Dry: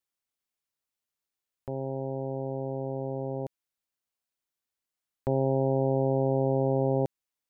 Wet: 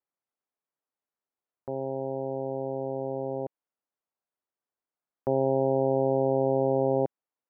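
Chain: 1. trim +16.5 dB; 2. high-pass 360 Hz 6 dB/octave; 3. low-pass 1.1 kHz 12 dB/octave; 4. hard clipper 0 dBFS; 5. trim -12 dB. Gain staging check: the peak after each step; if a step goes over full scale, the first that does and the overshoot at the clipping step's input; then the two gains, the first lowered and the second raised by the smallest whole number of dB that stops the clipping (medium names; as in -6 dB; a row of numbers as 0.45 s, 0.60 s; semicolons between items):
-1.0 dBFS, -1.5 dBFS, -2.0 dBFS, -2.0 dBFS, -14.0 dBFS; nothing clips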